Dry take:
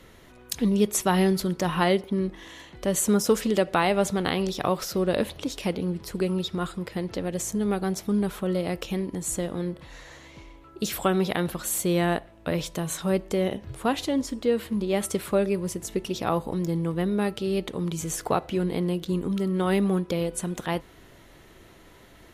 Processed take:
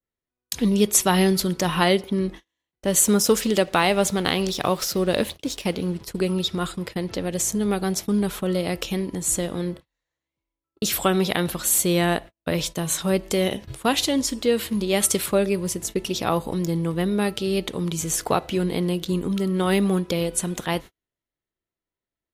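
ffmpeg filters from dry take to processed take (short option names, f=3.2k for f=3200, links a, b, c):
-filter_complex "[0:a]asettb=1/sr,asplit=3[a][b][c];[a]atrim=end=2.714[d];[b]atrim=start=2.71:end=6.01,asetpts=PTS-STARTPTS,afade=t=in:d=0.004:c=qsin,afade=t=out:st=3.296:d=0.004:c=qsin,aeval=exprs='sgn(val(0))*max(abs(val(0))-0.00282,0)':c=same[e];[c]atrim=start=6.006[f];[d][e]acrossfade=d=0.004:c1=hsin:c2=qsin[g];[g][f]acrossfade=d=0.004:c1=qsin:c2=hsin,asettb=1/sr,asplit=3[h][i][j];[h]atrim=end=13.234[k];[i]atrim=start=13.23:end=15.26,asetpts=PTS-STARTPTS,afade=t=in:d=0.004:c=qsin,afade=t=out:st=2.026:d=0.004:c=qsin,highshelf=f=2.1k:g=4.5[l];[j]atrim=start=15.256[m];[k][l]acrossfade=d=0.004:c1=hsin:c2=qsin[n];[n][m]acrossfade=d=0.004:c1=qsin:c2=hsin,agate=range=-43dB:threshold=-37dB:ratio=16:detection=peak,adynamicequalizer=threshold=0.00794:dfrequency=2300:dqfactor=0.7:tfrequency=2300:tqfactor=0.7:attack=5:release=100:ratio=0.375:range=3:mode=boostabove:tftype=highshelf,volume=2.5dB"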